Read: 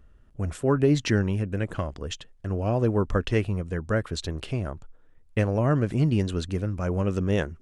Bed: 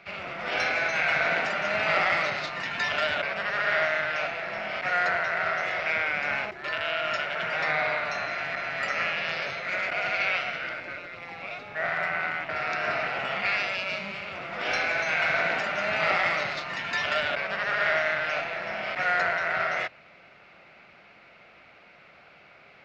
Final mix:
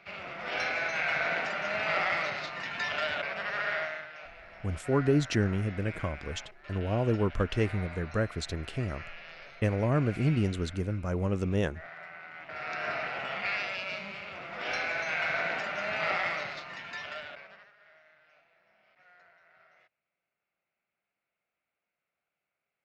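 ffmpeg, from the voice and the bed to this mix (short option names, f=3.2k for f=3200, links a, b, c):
-filter_complex "[0:a]adelay=4250,volume=-4dB[a];[1:a]volume=7dB,afade=t=out:st=3.61:d=0.48:silence=0.237137,afade=t=in:st=12.29:d=0.53:silence=0.251189,afade=t=out:st=16.16:d=1.56:silence=0.0334965[b];[a][b]amix=inputs=2:normalize=0"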